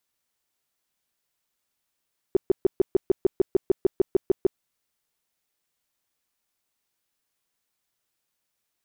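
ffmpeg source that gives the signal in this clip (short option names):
-f lavfi -i "aevalsrc='0.211*sin(2*PI*380*mod(t,0.15))*lt(mod(t,0.15),6/380)':d=2.25:s=44100"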